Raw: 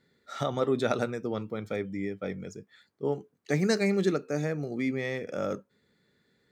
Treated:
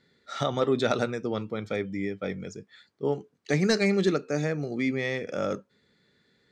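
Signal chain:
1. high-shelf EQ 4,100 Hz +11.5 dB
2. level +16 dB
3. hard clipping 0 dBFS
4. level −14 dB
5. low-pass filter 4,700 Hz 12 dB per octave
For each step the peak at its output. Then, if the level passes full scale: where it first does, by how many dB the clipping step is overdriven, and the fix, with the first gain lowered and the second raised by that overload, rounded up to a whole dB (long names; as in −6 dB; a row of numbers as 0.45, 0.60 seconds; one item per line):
−9.5, +6.5, 0.0, −14.0, −13.5 dBFS
step 2, 6.5 dB
step 2 +9 dB, step 4 −7 dB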